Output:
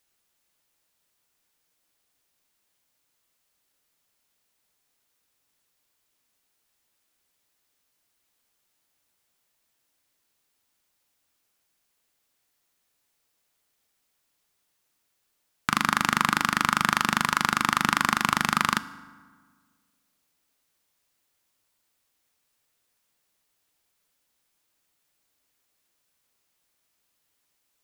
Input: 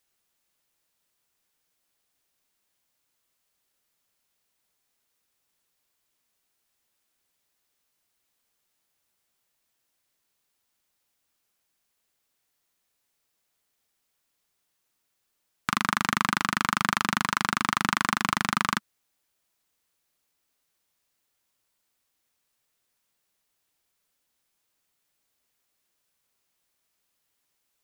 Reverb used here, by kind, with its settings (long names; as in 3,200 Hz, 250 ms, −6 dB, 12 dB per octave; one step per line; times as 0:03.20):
feedback delay network reverb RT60 1.6 s, low-frequency decay 1.2×, high-frequency decay 0.6×, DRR 14 dB
level +2 dB